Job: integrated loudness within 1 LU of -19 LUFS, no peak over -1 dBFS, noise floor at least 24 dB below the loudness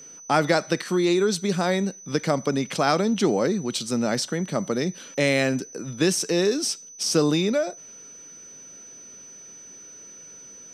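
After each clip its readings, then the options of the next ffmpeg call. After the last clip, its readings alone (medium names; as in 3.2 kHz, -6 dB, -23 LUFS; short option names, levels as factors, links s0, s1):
steady tone 6 kHz; tone level -42 dBFS; loudness -24.0 LUFS; peak level -6.5 dBFS; loudness target -19.0 LUFS
-> -af "bandreject=f=6000:w=30"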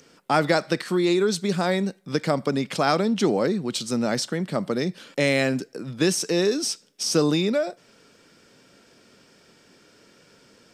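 steady tone not found; loudness -24.0 LUFS; peak level -6.5 dBFS; loudness target -19.0 LUFS
-> -af "volume=1.78"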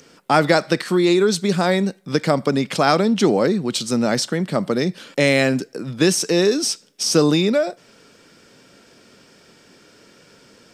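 loudness -19.0 LUFS; peak level -1.5 dBFS; noise floor -52 dBFS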